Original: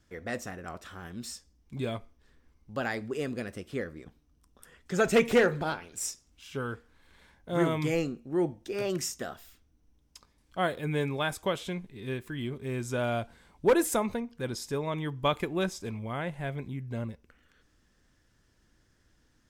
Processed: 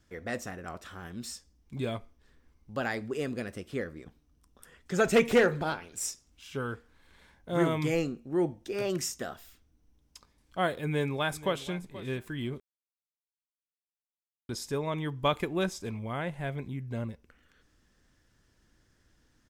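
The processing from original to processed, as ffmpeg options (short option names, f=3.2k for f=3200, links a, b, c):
-filter_complex "[0:a]asplit=2[a][b];[b]afade=t=in:st=10.85:d=0.01,afade=t=out:st=11.7:d=0.01,aecho=0:1:480|960:0.149624|0.0149624[c];[a][c]amix=inputs=2:normalize=0,asplit=3[d][e][f];[d]atrim=end=12.6,asetpts=PTS-STARTPTS,afade=t=out:st=12.596:d=0.004:c=hsin[g];[e]atrim=start=12.6:end=14.49,asetpts=PTS-STARTPTS,volume=0[h];[f]atrim=start=14.49,asetpts=PTS-STARTPTS,afade=t=in:d=0.004:c=hsin[i];[g][h][i]concat=n=3:v=0:a=1"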